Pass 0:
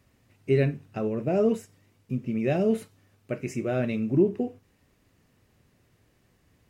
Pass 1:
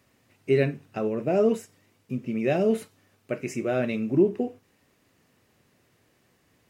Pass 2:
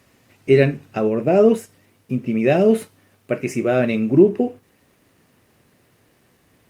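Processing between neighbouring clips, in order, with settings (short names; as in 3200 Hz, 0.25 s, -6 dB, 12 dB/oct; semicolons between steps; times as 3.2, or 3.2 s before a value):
HPF 240 Hz 6 dB/oct; gain +3 dB
gain +8 dB; Opus 48 kbps 48000 Hz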